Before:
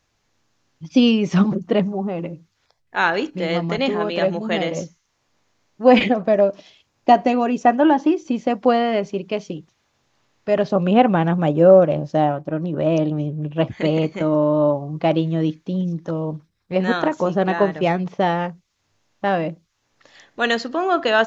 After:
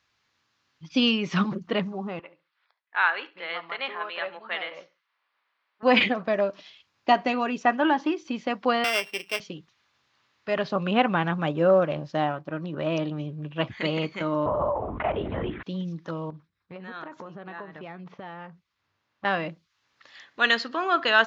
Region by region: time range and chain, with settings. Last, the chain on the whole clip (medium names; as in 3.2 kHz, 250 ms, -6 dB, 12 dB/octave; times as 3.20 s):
2.19–5.83 s: high-pass 730 Hz + distance through air 330 m + feedback delay 69 ms, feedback 23%, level -20 dB
8.84–9.40 s: sorted samples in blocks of 16 samples + high-pass 400 Hz + peaking EQ 720 Hz +4 dB 0.2 oct
14.46–15.63 s: three-band isolator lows -15 dB, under 400 Hz, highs -22 dB, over 2 kHz + LPC vocoder at 8 kHz whisper + level flattener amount 70%
16.30–19.25 s: treble shelf 2.5 kHz -11.5 dB + compression 5:1, threshold -30 dBFS
whole clip: high-pass 56 Hz; high-order bell 2.2 kHz +9.5 dB 2.6 oct; trim -9 dB